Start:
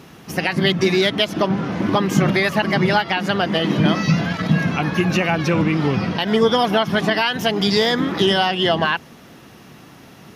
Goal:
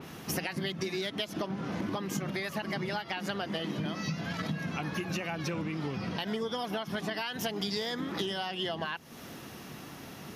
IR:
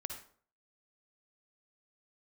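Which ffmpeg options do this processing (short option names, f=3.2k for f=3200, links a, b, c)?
-af "equalizer=f=12k:t=o:w=0.3:g=3,bandreject=f=60:t=h:w=6,bandreject=f=120:t=h:w=6,bandreject=f=180:t=h:w=6,acompressor=threshold=-29dB:ratio=12,adynamicequalizer=threshold=0.00282:dfrequency=4100:dqfactor=0.7:tfrequency=4100:tqfactor=0.7:attack=5:release=100:ratio=0.375:range=2.5:mode=boostabove:tftype=highshelf,volume=-2dB"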